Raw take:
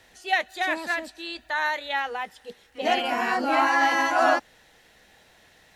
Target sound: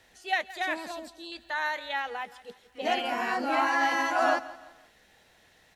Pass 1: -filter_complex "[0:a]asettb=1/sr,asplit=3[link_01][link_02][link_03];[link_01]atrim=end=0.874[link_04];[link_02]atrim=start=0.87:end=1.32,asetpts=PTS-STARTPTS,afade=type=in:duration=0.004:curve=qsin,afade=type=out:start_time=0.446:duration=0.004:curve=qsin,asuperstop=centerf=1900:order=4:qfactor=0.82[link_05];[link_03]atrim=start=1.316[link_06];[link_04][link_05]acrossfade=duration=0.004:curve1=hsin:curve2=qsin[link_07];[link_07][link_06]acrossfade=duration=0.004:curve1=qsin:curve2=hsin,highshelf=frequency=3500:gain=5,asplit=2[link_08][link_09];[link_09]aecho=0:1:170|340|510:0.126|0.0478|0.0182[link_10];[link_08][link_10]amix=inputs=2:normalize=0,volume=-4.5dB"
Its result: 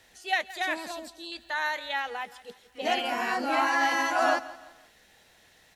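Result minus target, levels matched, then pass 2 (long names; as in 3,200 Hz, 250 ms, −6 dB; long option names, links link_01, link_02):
8,000 Hz band +3.5 dB
-filter_complex "[0:a]asettb=1/sr,asplit=3[link_01][link_02][link_03];[link_01]atrim=end=0.874[link_04];[link_02]atrim=start=0.87:end=1.32,asetpts=PTS-STARTPTS,afade=type=in:duration=0.004:curve=qsin,afade=type=out:start_time=0.446:duration=0.004:curve=qsin,asuperstop=centerf=1900:order=4:qfactor=0.82[link_05];[link_03]atrim=start=1.316[link_06];[link_04][link_05]acrossfade=duration=0.004:curve1=hsin:curve2=qsin[link_07];[link_07][link_06]acrossfade=duration=0.004:curve1=qsin:curve2=hsin,asplit=2[link_08][link_09];[link_09]aecho=0:1:170|340|510:0.126|0.0478|0.0182[link_10];[link_08][link_10]amix=inputs=2:normalize=0,volume=-4.5dB"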